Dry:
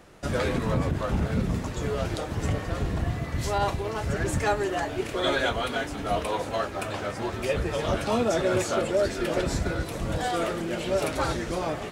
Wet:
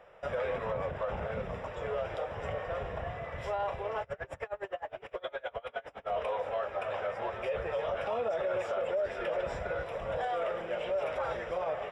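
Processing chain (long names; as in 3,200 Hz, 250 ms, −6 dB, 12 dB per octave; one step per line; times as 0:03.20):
Savitzky-Golay smoothing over 25 samples
low shelf with overshoot 400 Hz −9.5 dB, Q 3
brickwall limiter −20.5 dBFS, peak gain reduction 10 dB
0:04.02–0:06.10: tremolo with a sine in dB 9.7 Hz, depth 29 dB
level −4.5 dB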